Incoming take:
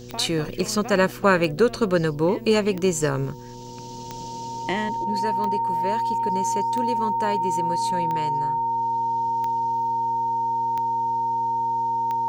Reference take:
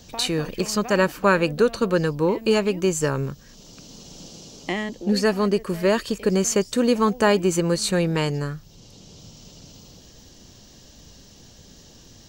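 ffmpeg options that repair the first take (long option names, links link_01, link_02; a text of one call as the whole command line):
ffmpeg -i in.wav -af "adeclick=threshold=4,bandreject=frequency=121.9:width_type=h:width=4,bandreject=frequency=243.8:width_type=h:width=4,bandreject=frequency=365.7:width_type=h:width=4,bandreject=frequency=487.6:width_type=h:width=4,bandreject=frequency=920:width=30,asetnsamples=nb_out_samples=441:pad=0,asendcmd='5.04 volume volume 10dB',volume=0dB" out.wav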